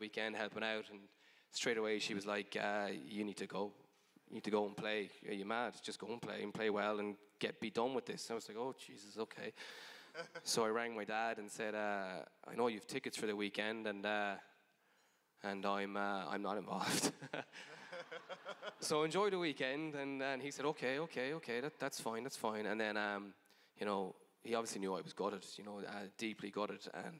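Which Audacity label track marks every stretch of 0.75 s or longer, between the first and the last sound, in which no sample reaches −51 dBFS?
14.400000	15.440000	silence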